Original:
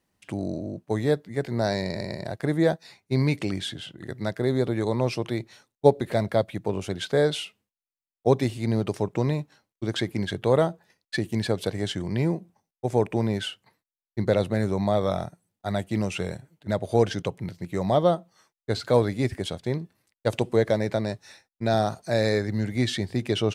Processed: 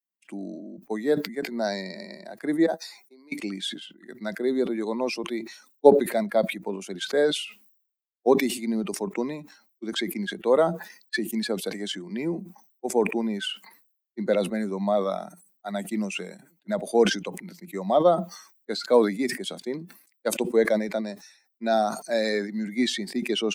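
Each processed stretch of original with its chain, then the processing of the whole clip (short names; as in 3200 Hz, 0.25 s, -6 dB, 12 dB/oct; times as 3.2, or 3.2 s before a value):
2.66–3.32 HPF 330 Hz + compressor 2.5:1, threshold -45 dBFS + bell 2500 Hz -6.5 dB 1.5 oct
whole clip: per-bin expansion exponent 1.5; steep high-pass 200 Hz 48 dB/oct; sustainer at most 100 dB/s; gain +3.5 dB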